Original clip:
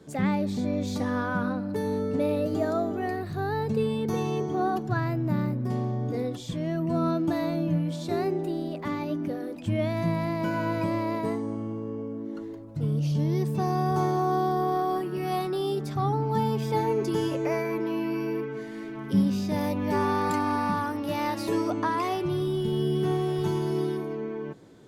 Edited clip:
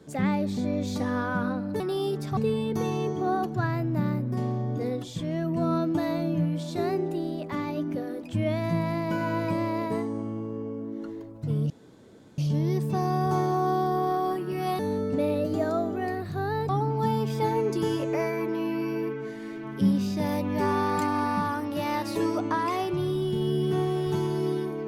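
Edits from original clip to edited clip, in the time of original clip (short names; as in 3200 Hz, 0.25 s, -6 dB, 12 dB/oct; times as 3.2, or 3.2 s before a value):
1.8–3.7 swap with 15.44–16.01
13.03 insert room tone 0.68 s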